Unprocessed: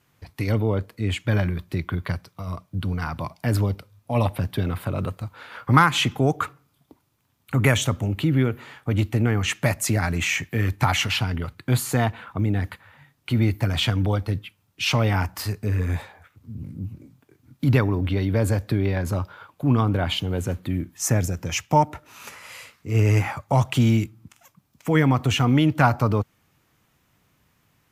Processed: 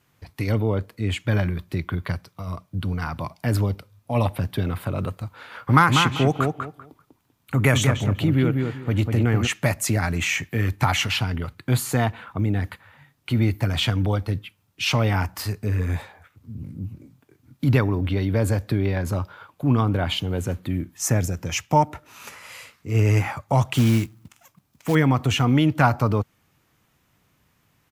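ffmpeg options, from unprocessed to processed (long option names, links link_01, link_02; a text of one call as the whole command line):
ffmpeg -i in.wav -filter_complex "[0:a]asplit=3[link_01][link_02][link_03];[link_01]afade=type=out:start_time=5.68:duration=0.02[link_04];[link_02]asplit=2[link_05][link_06];[link_06]adelay=195,lowpass=frequency=2000:poles=1,volume=-4dB,asplit=2[link_07][link_08];[link_08]adelay=195,lowpass=frequency=2000:poles=1,volume=0.23,asplit=2[link_09][link_10];[link_10]adelay=195,lowpass=frequency=2000:poles=1,volume=0.23[link_11];[link_05][link_07][link_09][link_11]amix=inputs=4:normalize=0,afade=type=in:start_time=5.68:duration=0.02,afade=type=out:start_time=9.46:duration=0.02[link_12];[link_03]afade=type=in:start_time=9.46:duration=0.02[link_13];[link_04][link_12][link_13]amix=inputs=3:normalize=0,asettb=1/sr,asplit=3[link_14][link_15][link_16];[link_14]atrim=end=23.744[link_17];[link_15]atrim=start=23.74:end=24.95,asetpts=PTS-STARTPTS,afade=type=in:duration=0.004:curve=qsin,afade=type=out:start_time=1.206:duration=0.004:curve=qsin,acrusher=bits=4:mode=log:mix=0:aa=0.000001[link_18];[link_16]atrim=start=24.946[link_19];[link_17][link_18]acrossfade=duration=0.004:curve1=hsin:curve2=qsin[link_20];[link_20][link_19]acrossfade=duration=0.004:curve1=qsin:curve2=hsin" out.wav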